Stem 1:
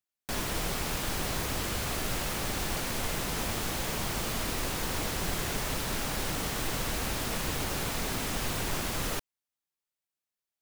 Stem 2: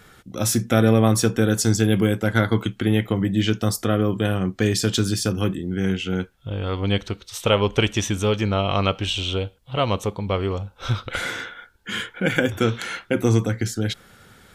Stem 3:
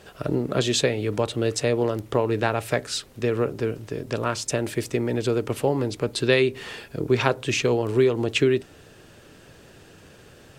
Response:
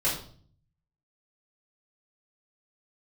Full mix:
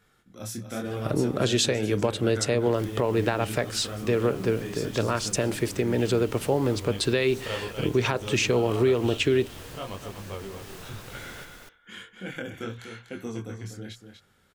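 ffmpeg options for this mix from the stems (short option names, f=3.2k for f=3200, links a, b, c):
-filter_complex "[0:a]adelay=2250,volume=-14dB,asplit=2[a][b];[b]volume=-3dB[c];[1:a]bandreject=f=60:t=h:w=6,bandreject=f=120:t=h:w=6,flanger=delay=20:depth=6.8:speed=0.99,volume=-12dB,asplit=3[d][e][f];[e]volume=-8.5dB[g];[2:a]adelay=850,volume=1dB[h];[f]apad=whole_len=567219[i];[a][i]sidechaincompress=threshold=-41dB:ratio=8:attack=16:release=246[j];[c][g]amix=inputs=2:normalize=0,aecho=0:1:244:1[k];[j][d][h][k]amix=inputs=4:normalize=0,alimiter=limit=-13dB:level=0:latency=1:release=154"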